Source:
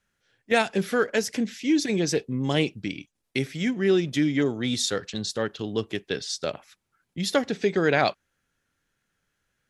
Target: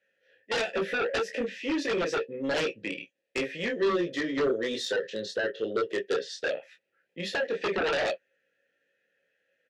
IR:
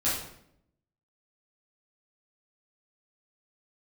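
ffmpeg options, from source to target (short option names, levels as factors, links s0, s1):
-filter_complex "[0:a]asplit=3[s0][s1][s2];[s0]bandpass=f=530:t=q:w=8,volume=1[s3];[s1]bandpass=f=1840:t=q:w=8,volume=0.501[s4];[s2]bandpass=f=2480:t=q:w=8,volume=0.355[s5];[s3][s4][s5]amix=inputs=3:normalize=0,aecho=1:1:18|29|44:0.631|0.562|0.211,alimiter=limit=0.0668:level=0:latency=1:release=260,highpass=110,aeval=exprs='0.075*sin(PI/2*3.16*val(0)/0.075)':c=same,asettb=1/sr,asplit=3[s6][s7][s8];[s6]atrim=end=3.724[s9];[s7]atrim=start=3.72:end=6.39,asetpts=PTS-STARTPTS,afade=t=in:d=0.004:c=qsin,afade=t=out:st=2.666:d=0.004:c=qsin,equalizer=f=400:t=o:w=0.33:g=6,equalizer=f=800:t=o:w=0.33:g=-8,equalizer=f=2500:t=o:w=0.33:g=-9[s10];[s8]atrim=start=6.386[s11];[s9][s10]acrossfade=d=0.004:c1=hsin:c2=qsin[s12];[s12][s11]acrossfade=d=0.004:c1=qsin:c2=hsin,volume=0.841"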